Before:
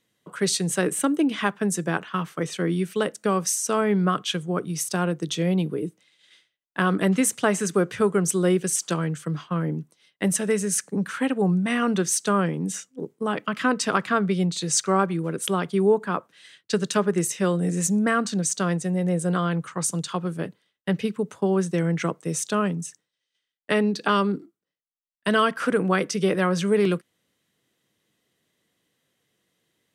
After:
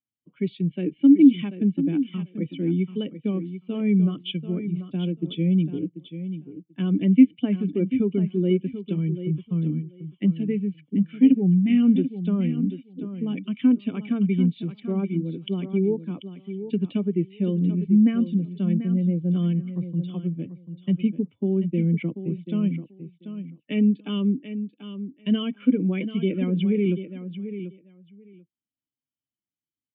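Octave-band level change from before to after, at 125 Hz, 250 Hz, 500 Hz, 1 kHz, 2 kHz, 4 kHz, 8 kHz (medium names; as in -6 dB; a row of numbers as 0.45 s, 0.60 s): +2.0 dB, +4.5 dB, -6.0 dB, under -20 dB, -14.5 dB, no reading, under -40 dB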